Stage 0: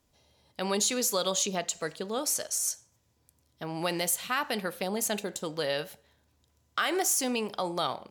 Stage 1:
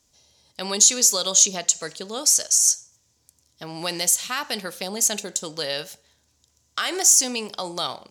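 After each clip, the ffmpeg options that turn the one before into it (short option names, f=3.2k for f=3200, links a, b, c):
-af "equalizer=f=6.3k:t=o:w=1.4:g=15"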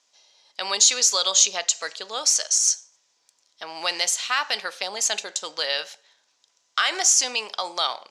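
-af "highpass=760,lowpass=4.8k,volume=5dB"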